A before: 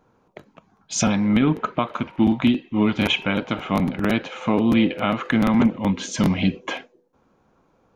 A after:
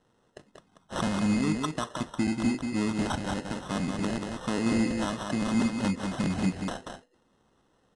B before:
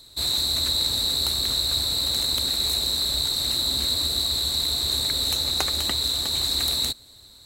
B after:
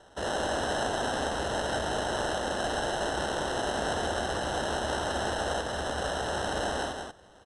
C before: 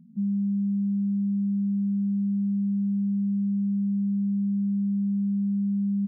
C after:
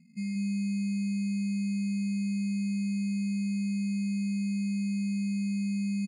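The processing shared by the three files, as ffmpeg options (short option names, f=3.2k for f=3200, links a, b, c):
-af "alimiter=limit=-11.5dB:level=0:latency=1:release=214,acrusher=samples=19:mix=1:aa=0.000001,aecho=1:1:186:0.562,aresample=22050,aresample=44100,volume=-7dB"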